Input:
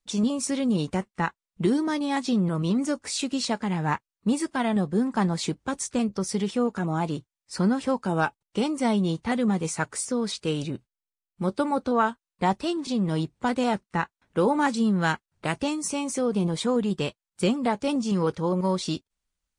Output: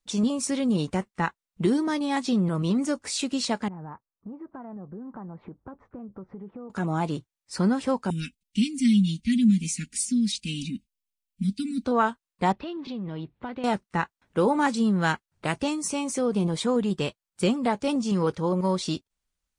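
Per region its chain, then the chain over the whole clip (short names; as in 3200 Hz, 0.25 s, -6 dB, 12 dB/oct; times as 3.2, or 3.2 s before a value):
3.68–6.7 LPF 1300 Hz 24 dB/oct + compressor 5:1, threshold -38 dBFS
8.1–11.85 elliptic band-stop 250–2400 Hz, stop band 60 dB + comb 4.2 ms, depth 98%
12.52–13.64 LPF 3600 Hz 24 dB/oct + compressor 3:1, threshold -33 dBFS
whole clip: dry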